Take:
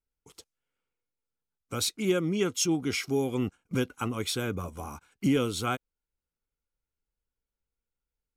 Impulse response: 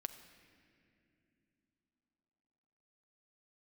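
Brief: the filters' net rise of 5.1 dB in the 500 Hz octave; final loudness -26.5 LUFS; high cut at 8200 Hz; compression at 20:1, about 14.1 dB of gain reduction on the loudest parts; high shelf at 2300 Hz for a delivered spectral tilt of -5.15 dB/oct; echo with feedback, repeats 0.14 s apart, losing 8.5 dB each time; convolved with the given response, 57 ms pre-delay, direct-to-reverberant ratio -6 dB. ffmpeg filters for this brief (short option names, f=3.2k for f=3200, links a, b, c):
-filter_complex "[0:a]lowpass=8.2k,equalizer=f=500:t=o:g=7,highshelf=f=2.3k:g=-6,acompressor=threshold=-32dB:ratio=20,aecho=1:1:140|280|420|560:0.376|0.143|0.0543|0.0206,asplit=2[a][b];[1:a]atrim=start_sample=2205,adelay=57[c];[b][c]afir=irnorm=-1:irlink=0,volume=8.5dB[d];[a][d]amix=inputs=2:normalize=0,volume=4dB"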